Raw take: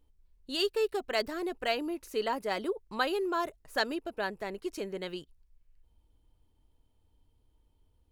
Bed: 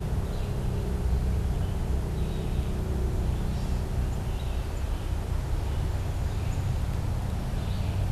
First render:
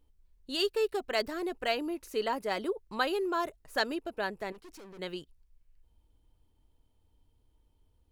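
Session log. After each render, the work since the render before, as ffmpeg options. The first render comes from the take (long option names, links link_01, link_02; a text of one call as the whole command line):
ffmpeg -i in.wav -filter_complex "[0:a]asettb=1/sr,asplit=3[link_01][link_02][link_03];[link_01]atrim=end=4.524[link_04];[link_02]atrim=start=4.52:end=4.99,asetpts=PTS-STARTPTS,afade=type=in:duration=0.004:curve=qsin,afade=type=out:start_time=0.466:duration=0.004:curve=qsin,aeval=exprs='(tanh(251*val(0)+0.45)-tanh(0.45))/251':channel_layout=same[link_05];[link_03]atrim=start=4.986[link_06];[link_04][link_05]acrossfade=duration=0.004:curve1=hsin:curve2=qsin[link_07];[link_07][link_06]acrossfade=duration=0.004:curve1=qsin:curve2=hsin" out.wav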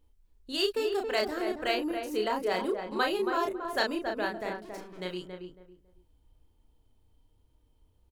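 ffmpeg -i in.wav -filter_complex "[0:a]asplit=2[link_01][link_02];[link_02]adelay=33,volume=-3.5dB[link_03];[link_01][link_03]amix=inputs=2:normalize=0,asplit=2[link_04][link_05];[link_05]adelay=276,lowpass=frequency=1300:poles=1,volume=-5dB,asplit=2[link_06][link_07];[link_07]adelay=276,lowpass=frequency=1300:poles=1,volume=0.25,asplit=2[link_08][link_09];[link_09]adelay=276,lowpass=frequency=1300:poles=1,volume=0.25[link_10];[link_06][link_08][link_10]amix=inputs=3:normalize=0[link_11];[link_04][link_11]amix=inputs=2:normalize=0" out.wav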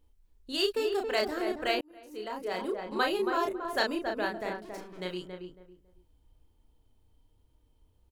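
ffmpeg -i in.wav -filter_complex "[0:a]asplit=2[link_01][link_02];[link_01]atrim=end=1.81,asetpts=PTS-STARTPTS,afade=type=out:start_time=1.806:duration=0.004:curve=hsin[link_03];[link_02]atrim=start=1.81,asetpts=PTS-STARTPTS,afade=type=in:duration=1.2[link_04];[link_03][link_04]concat=n=2:v=0:a=1" out.wav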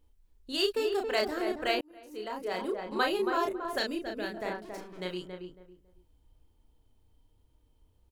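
ffmpeg -i in.wav -filter_complex "[0:a]asettb=1/sr,asplit=3[link_01][link_02][link_03];[link_01]atrim=end=3.784[link_04];[link_02]atrim=start=3.78:end=4.37,asetpts=PTS-STARTPTS,afade=type=in:duration=0.004:curve=qsin,afade=type=out:start_time=0.586:duration=0.004:curve=qsin,equalizer=frequency=1000:width=1.1:gain=-12[link_05];[link_03]atrim=start=4.366[link_06];[link_04][link_05]acrossfade=duration=0.004:curve1=hsin:curve2=qsin[link_07];[link_07][link_06]acrossfade=duration=0.004:curve1=qsin:curve2=hsin" out.wav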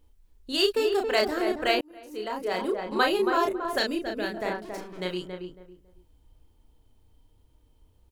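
ffmpeg -i in.wav -af "volume=5dB" out.wav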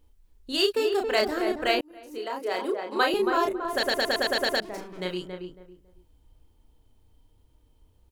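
ffmpeg -i in.wav -filter_complex "[0:a]asettb=1/sr,asplit=3[link_01][link_02][link_03];[link_01]atrim=end=0.624[link_04];[link_02]atrim=start=0.62:end=1.02,asetpts=PTS-STARTPTS,afade=type=in:duration=0.004:curve=qsin,afade=type=out:start_time=0.396:duration=0.004:curve=qsin,highpass=frequency=94:poles=1[link_05];[link_03]atrim=start=1.016[link_06];[link_04][link_05]acrossfade=duration=0.004:curve1=hsin:curve2=qsin[link_07];[link_07][link_06]acrossfade=duration=0.004:curve1=qsin:curve2=hsin,asettb=1/sr,asplit=3[link_08][link_09][link_10];[link_08]atrim=end=2.184[link_11];[link_09]atrim=start=2.18:end=3.14,asetpts=PTS-STARTPTS,afade=type=in:duration=0.004:curve=qsin,afade=type=out:start_time=0.956:duration=0.004:curve=qsin,highpass=frequency=270:width=0.5412,highpass=frequency=270:width=1.3066[link_12];[link_10]atrim=start=3.136[link_13];[link_11][link_12]acrossfade=duration=0.004:curve1=hsin:curve2=qsin[link_14];[link_14][link_13]acrossfade=duration=0.004:curve1=qsin:curve2=hsin,asplit=9[link_15][link_16][link_17][link_18][link_19][link_20][link_21][link_22][link_23];[link_15]atrim=end=3.832[link_24];[link_16]atrim=start=3.718:end=3.832[link_25];[link_17]atrim=start=3.718:end=3.832[link_26];[link_18]atrim=start=3.718:end=3.832[link_27];[link_19]atrim=start=3.718:end=3.832[link_28];[link_20]atrim=start=3.718:end=3.832[link_29];[link_21]atrim=start=3.718:end=3.832[link_30];[link_22]atrim=start=3.718:end=3.832[link_31];[link_23]atrim=start=4.598[link_32];[link_24][link_25]acrossfade=duration=0.004:curve1=hsin:curve2=hsin[link_33];[link_33][link_26]acrossfade=duration=0.004:curve1=hsin:curve2=hsin[link_34];[link_34][link_27]acrossfade=duration=0.004:curve1=hsin:curve2=hsin[link_35];[link_35][link_28]acrossfade=duration=0.004:curve1=hsin:curve2=hsin[link_36];[link_36][link_29]acrossfade=duration=0.004:curve1=hsin:curve2=hsin[link_37];[link_37][link_30]acrossfade=duration=0.004:curve1=hsin:curve2=hsin[link_38];[link_38][link_31]acrossfade=duration=0.004:curve1=hsin:curve2=hsin[link_39];[link_39][link_32]acrossfade=duration=0.004:curve1=hsin:curve2=hsin" out.wav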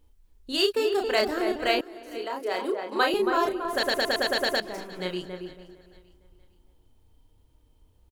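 ffmpeg -i in.wav -af "aecho=1:1:457|914|1371:0.106|0.0381|0.0137" out.wav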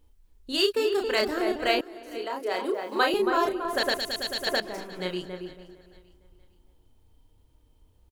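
ffmpeg -i in.wav -filter_complex "[0:a]asettb=1/sr,asplit=3[link_01][link_02][link_03];[link_01]atrim=end=0.604[link_04];[link_02]atrim=start=0.6:end=1.35,asetpts=PTS-STARTPTS,afade=type=in:duration=0.004:curve=qsin,afade=type=out:start_time=0.746:duration=0.004:curve=qsin,equalizer=frequency=720:width_type=o:width=0.2:gain=-11[link_05];[link_03]atrim=start=1.346[link_06];[link_04][link_05]acrossfade=duration=0.004:curve1=hsin:curve2=qsin[link_07];[link_07][link_06]acrossfade=duration=0.004:curve1=qsin:curve2=hsin,asettb=1/sr,asplit=3[link_08][link_09][link_10];[link_08]atrim=end=2.744[link_11];[link_09]atrim=start=2.74:end=3.22,asetpts=PTS-STARTPTS,afade=type=in:duration=0.004:curve=qsin,afade=type=out:start_time=0.476:duration=0.004:curve=qsin,acrusher=bits=8:mix=0:aa=0.5[link_12];[link_10]atrim=start=3.216[link_13];[link_11][link_12]acrossfade=duration=0.004:curve1=hsin:curve2=qsin[link_14];[link_14][link_13]acrossfade=duration=0.004:curve1=qsin:curve2=hsin,asettb=1/sr,asplit=3[link_15][link_16][link_17];[link_15]atrim=end=3.974[link_18];[link_16]atrim=start=3.97:end=4.47,asetpts=PTS-STARTPTS,afade=type=in:duration=0.004:curve=qsin,afade=type=out:start_time=0.496:duration=0.004:curve=qsin,acrossover=split=180|3000[link_19][link_20][link_21];[link_20]acompressor=threshold=-52dB:ratio=1.5:attack=3.2:release=140:knee=2.83:detection=peak[link_22];[link_19][link_22][link_21]amix=inputs=3:normalize=0[link_23];[link_17]atrim=start=4.466[link_24];[link_18][link_23]acrossfade=duration=0.004:curve1=hsin:curve2=qsin[link_25];[link_25][link_24]acrossfade=duration=0.004:curve1=qsin:curve2=hsin" out.wav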